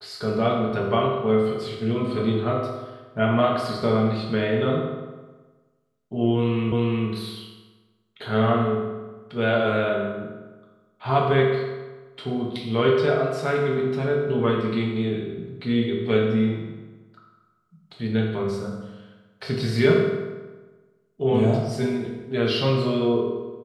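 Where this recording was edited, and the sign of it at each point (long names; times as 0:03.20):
0:06.72: the same again, the last 0.36 s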